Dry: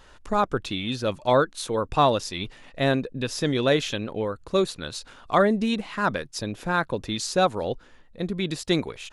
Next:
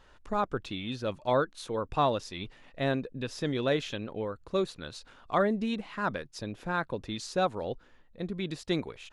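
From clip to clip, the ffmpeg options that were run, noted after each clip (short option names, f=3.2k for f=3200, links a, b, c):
-af "highshelf=f=6.3k:g=-9.5,volume=-6.5dB"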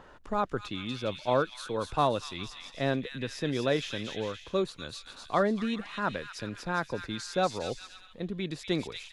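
-filter_complex "[0:a]acrossover=split=120|1600[a][b][c];[b]acompressor=mode=upward:threshold=-46dB:ratio=2.5[d];[c]aecho=1:1:240|408|525.6|607.9|665.5:0.631|0.398|0.251|0.158|0.1[e];[a][d][e]amix=inputs=3:normalize=0"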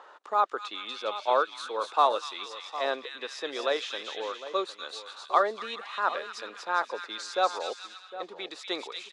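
-filter_complex "[0:a]highpass=f=410:w=0.5412,highpass=f=410:w=1.3066,equalizer=f=840:t=q:w=4:g=5,equalizer=f=1.2k:t=q:w=4:g=8,equalizer=f=3.8k:t=q:w=4:g=4,lowpass=f=9.1k:w=0.5412,lowpass=f=9.1k:w=1.3066,asplit=2[a][b];[b]adelay=758,volume=-13dB,highshelf=f=4k:g=-17.1[c];[a][c]amix=inputs=2:normalize=0"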